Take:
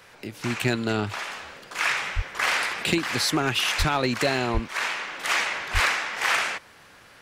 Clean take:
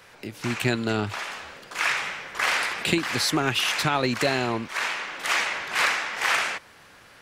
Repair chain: clip repair -12.5 dBFS; de-plosive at 2.15/3.78/4.53/5.73 s

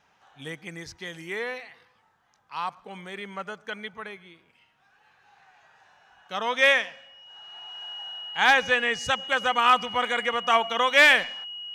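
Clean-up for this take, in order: band-stop 2.9 kHz, Q 30

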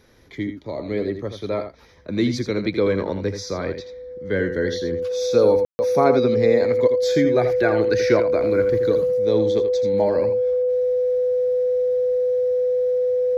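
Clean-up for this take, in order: band-stop 500 Hz, Q 30; room tone fill 5.65–5.79 s; inverse comb 82 ms -9 dB

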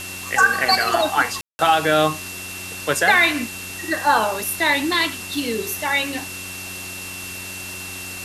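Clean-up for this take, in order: de-hum 92.6 Hz, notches 4; band-stop 2.7 kHz, Q 30; room tone fill 1.41–1.59 s; noise print and reduce 30 dB

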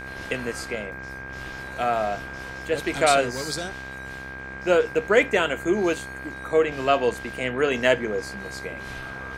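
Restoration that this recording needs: de-hum 65.7 Hz, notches 38; band-stop 1.6 kHz, Q 30

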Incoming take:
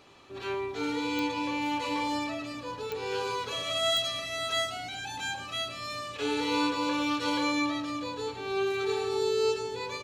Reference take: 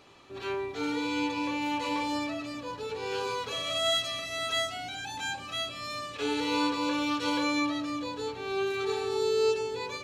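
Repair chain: de-click; inverse comb 108 ms -12 dB

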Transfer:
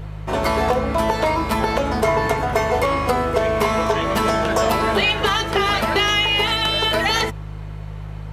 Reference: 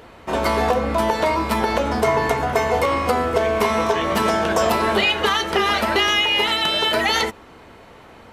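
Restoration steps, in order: de-hum 51.5 Hz, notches 3

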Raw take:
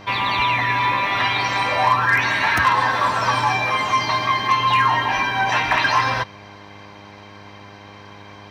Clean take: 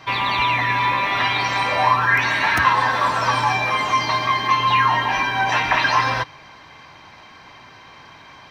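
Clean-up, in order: clip repair -9 dBFS; de-hum 101.4 Hz, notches 10

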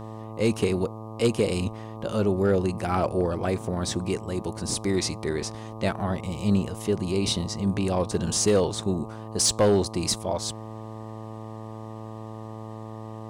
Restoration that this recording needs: clip repair -14 dBFS; de-hum 110.1 Hz, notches 11

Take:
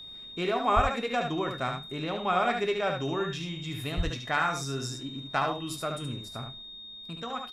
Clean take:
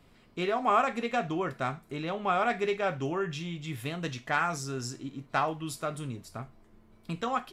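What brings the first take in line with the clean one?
band-stop 3.7 kHz, Q 30; de-plosive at 0.75/3.96 s; inverse comb 73 ms -5.5 dB; trim 0 dB, from 6.62 s +6 dB

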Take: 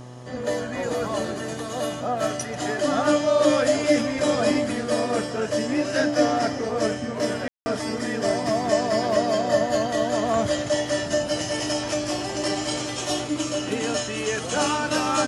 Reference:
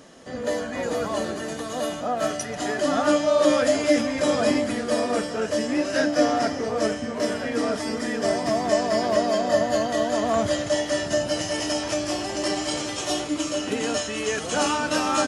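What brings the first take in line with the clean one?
de-hum 123.7 Hz, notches 10; room tone fill 7.48–7.66 s

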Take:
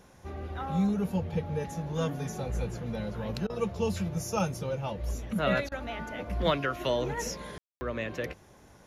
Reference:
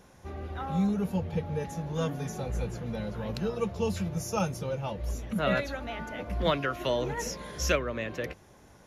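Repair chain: room tone fill 7.58–7.81 s; interpolate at 3.47/5.69 s, 26 ms

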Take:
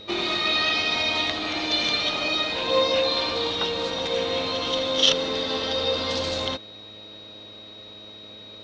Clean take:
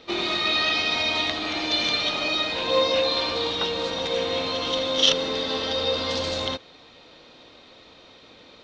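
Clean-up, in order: de-hum 105.5 Hz, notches 6; band-stop 3.8 kHz, Q 30

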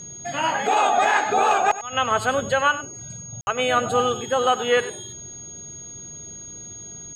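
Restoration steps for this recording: band-stop 6.6 kHz, Q 30; room tone fill 3.41–3.47 s; inverse comb 97 ms -15 dB

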